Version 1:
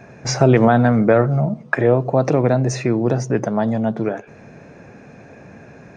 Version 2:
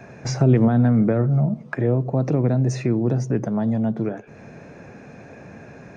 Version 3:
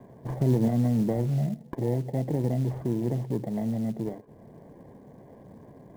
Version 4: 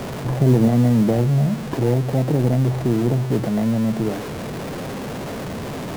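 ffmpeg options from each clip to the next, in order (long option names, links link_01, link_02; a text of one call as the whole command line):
ffmpeg -i in.wav -filter_complex "[0:a]acrossover=split=330[link_01][link_02];[link_02]acompressor=threshold=-37dB:ratio=2[link_03];[link_01][link_03]amix=inputs=2:normalize=0" out.wav
ffmpeg -i in.wav -filter_complex "[0:a]acrossover=split=640[link_01][link_02];[link_02]acrusher=samples=33:mix=1:aa=0.000001[link_03];[link_01][link_03]amix=inputs=2:normalize=0,lowpass=frequency=1200:width_type=q:width=1.6,acrusher=bits=7:mode=log:mix=0:aa=0.000001,volume=-7.5dB" out.wav
ffmpeg -i in.wav -af "aeval=exprs='val(0)+0.5*0.0266*sgn(val(0))':channel_layout=same,volume=7dB" out.wav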